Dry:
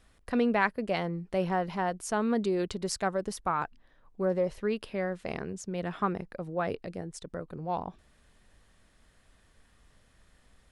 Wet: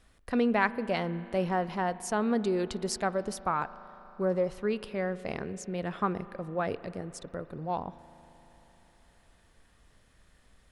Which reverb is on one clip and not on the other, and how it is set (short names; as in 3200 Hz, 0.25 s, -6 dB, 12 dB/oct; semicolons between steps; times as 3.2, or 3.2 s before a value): spring tank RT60 3.9 s, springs 38 ms, chirp 25 ms, DRR 15.5 dB